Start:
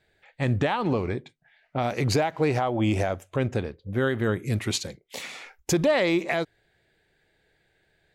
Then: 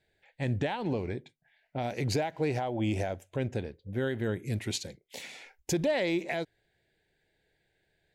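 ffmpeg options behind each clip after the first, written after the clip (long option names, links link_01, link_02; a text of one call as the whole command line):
ffmpeg -i in.wav -af "equalizer=frequency=1200:width_type=o:width=0.31:gain=-14.5,volume=-6dB" out.wav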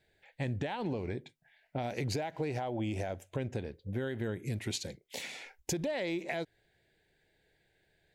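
ffmpeg -i in.wav -af "acompressor=threshold=-34dB:ratio=5,volume=2dB" out.wav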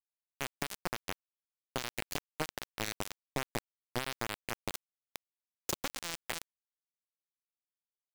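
ffmpeg -i in.wav -af "aeval=exprs='0.1*(cos(1*acos(clip(val(0)/0.1,-1,1)))-cos(1*PI/2))+0.0126*(cos(3*acos(clip(val(0)/0.1,-1,1)))-cos(3*PI/2))':channel_layout=same,acrusher=bits=4:mix=0:aa=0.000001,volume=3dB" out.wav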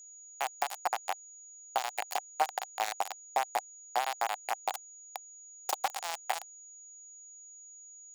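ffmpeg -i in.wav -af "highpass=frequency=770:width_type=q:width=7.4,aeval=exprs='val(0)+0.00355*sin(2*PI*6800*n/s)':channel_layout=same" out.wav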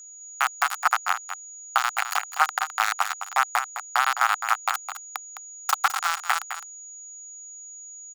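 ffmpeg -i in.wav -af "highpass=frequency=1300:width_type=q:width=5.9,aecho=1:1:210:0.316,volume=7dB" out.wav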